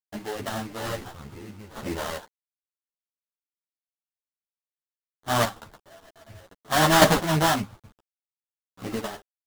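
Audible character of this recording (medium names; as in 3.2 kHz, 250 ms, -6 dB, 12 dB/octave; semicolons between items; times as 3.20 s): aliases and images of a low sample rate 2.4 kHz, jitter 20%; chopped level 0.57 Hz, depth 60%, duty 10%; a quantiser's noise floor 10-bit, dither none; a shimmering, thickened sound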